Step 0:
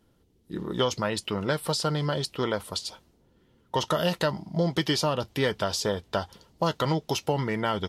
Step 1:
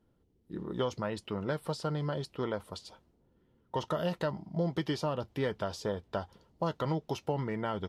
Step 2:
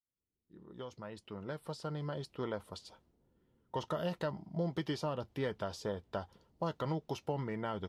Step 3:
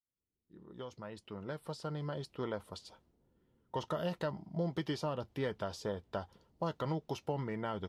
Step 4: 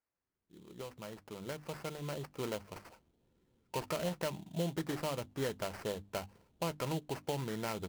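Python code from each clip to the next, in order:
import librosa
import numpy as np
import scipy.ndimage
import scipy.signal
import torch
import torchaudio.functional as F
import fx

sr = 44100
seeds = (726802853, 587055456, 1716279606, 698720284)

y1 = fx.high_shelf(x, sr, hz=2300.0, db=-11.5)
y1 = y1 * librosa.db_to_amplitude(-5.5)
y2 = fx.fade_in_head(y1, sr, length_s=2.52)
y2 = y2 * librosa.db_to_amplitude(-4.0)
y3 = y2
y4 = fx.sample_hold(y3, sr, seeds[0], rate_hz=3600.0, jitter_pct=20)
y4 = fx.hum_notches(y4, sr, base_hz=50, count=6)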